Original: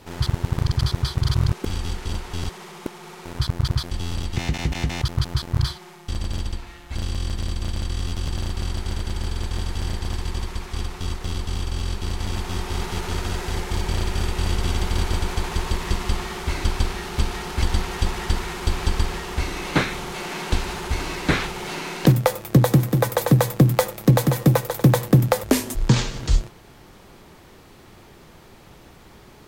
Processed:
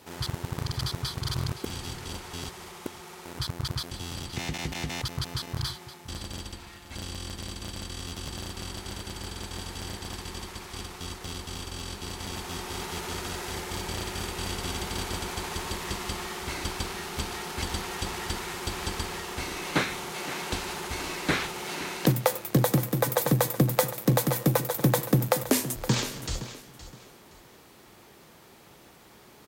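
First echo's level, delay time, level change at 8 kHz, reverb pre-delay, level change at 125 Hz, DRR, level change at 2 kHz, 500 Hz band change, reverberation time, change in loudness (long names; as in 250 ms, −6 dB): −14.0 dB, 518 ms, −1.0 dB, no reverb audible, −10.0 dB, no reverb audible, −4.0 dB, −5.0 dB, no reverb audible, −6.5 dB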